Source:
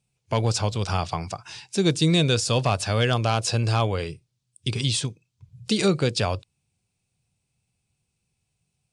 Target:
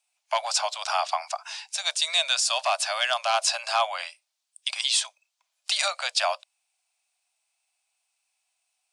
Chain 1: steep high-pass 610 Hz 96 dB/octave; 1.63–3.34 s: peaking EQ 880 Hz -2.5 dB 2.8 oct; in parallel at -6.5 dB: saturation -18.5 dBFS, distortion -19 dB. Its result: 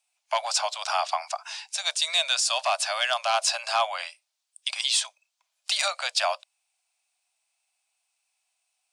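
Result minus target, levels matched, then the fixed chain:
saturation: distortion +17 dB
steep high-pass 610 Hz 96 dB/octave; 1.63–3.34 s: peaking EQ 880 Hz -2.5 dB 2.8 oct; in parallel at -6.5 dB: saturation -8 dBFS, distortion -36 dB

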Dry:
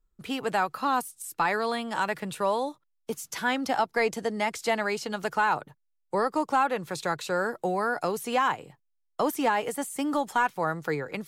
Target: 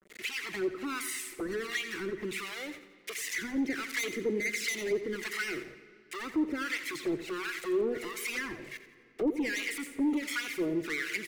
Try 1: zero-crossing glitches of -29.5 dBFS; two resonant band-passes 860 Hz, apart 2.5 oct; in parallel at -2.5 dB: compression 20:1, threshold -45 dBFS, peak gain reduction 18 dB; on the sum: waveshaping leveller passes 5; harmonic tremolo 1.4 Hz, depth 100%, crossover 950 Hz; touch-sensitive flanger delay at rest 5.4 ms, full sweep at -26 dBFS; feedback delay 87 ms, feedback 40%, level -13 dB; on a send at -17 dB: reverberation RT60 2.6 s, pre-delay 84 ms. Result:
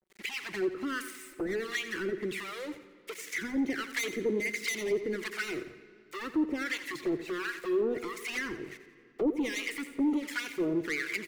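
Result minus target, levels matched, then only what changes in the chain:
compression: peak gain reduction -7.5 dB; zero-crossing glitches: distortion -8 dB
change: zero-crossing glitches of -21 dBFS; change: compression 20:1, threshold -53 dBFS, peak gain reduction 25.5 dB

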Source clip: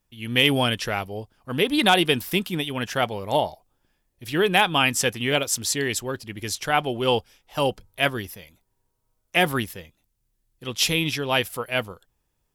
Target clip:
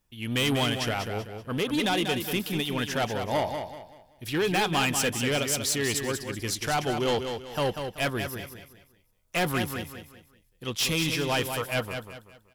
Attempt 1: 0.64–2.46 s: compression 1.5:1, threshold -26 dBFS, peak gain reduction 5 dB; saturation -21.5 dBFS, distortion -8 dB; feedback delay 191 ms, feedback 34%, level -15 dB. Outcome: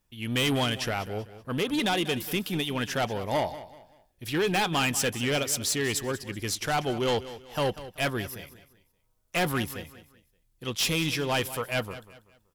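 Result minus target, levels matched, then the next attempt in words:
echo-to-direct -8 dB
0.64–2.46 s: compression 1.5:1, threshold -26 dBFS, peak gain reduction 5 dB; saturation -21.5 dBFS, distortion -8 dB; feedback delay 191 ms, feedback 34%, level -7 dB

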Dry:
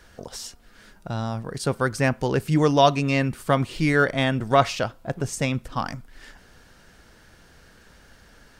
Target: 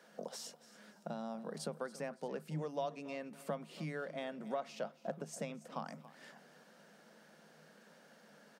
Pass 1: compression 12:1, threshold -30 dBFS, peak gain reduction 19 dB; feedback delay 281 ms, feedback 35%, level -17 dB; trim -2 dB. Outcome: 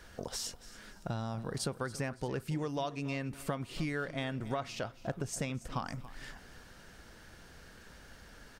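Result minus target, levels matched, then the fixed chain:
125 Hz band +5.0 dB
compression 12:1, threshold -30 dBFS, peak gain reduction 19 dB; rippled Chebyshev high-pass 150 Hz, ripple 9 dB; feedback delay 281 ms, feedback 35%, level -17 dB; trim -2 dB

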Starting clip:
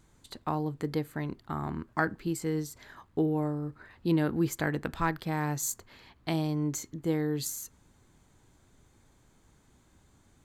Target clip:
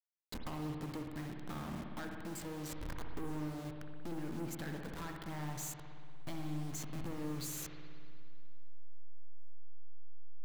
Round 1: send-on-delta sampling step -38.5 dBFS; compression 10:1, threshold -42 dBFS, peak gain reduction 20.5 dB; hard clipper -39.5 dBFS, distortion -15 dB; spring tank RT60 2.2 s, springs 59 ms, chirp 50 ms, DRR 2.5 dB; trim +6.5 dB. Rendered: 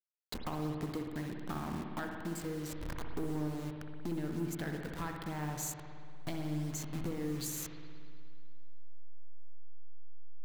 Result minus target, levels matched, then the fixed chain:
hard clipper: distortion -9 dB
send-on-delta sampling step -38.5 dBFS; compression 10:1, threshold -42 dBFS, peak gain reduction 20.5 dB; hard clipper -47.5 dBFS, distortion -6 dB; spring tank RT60 2.2 s, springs 59 ms, chirp 50 ms, DRR 2.5 dB; trim +6.5 dB

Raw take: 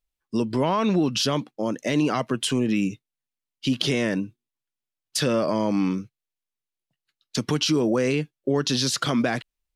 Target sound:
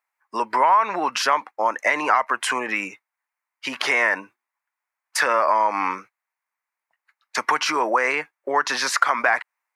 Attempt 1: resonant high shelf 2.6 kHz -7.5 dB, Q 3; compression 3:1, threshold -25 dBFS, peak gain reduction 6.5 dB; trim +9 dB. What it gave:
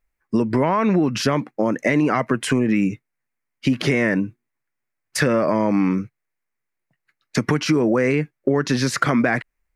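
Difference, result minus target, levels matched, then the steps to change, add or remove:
1 kHz band -8.0 dB
add first: resonant high-pass 930 Hz, resonance Q 2.8

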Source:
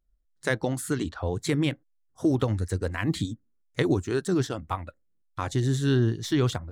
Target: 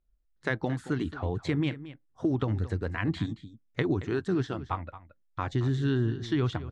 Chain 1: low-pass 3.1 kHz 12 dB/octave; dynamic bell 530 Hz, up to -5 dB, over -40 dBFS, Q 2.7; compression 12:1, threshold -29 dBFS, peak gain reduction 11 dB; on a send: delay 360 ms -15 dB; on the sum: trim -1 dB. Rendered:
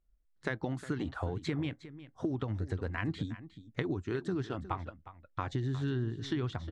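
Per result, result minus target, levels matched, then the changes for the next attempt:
echo 136 ms late; compression: peak gain reduction +7.5 dB
change: delay 224 ms -15 dB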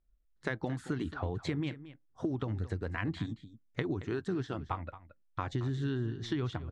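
compression: peak gain reduction +7.5 dB
change: compression 12:1, threshold -21 dBFS, peak gain reduction 3.5 dB

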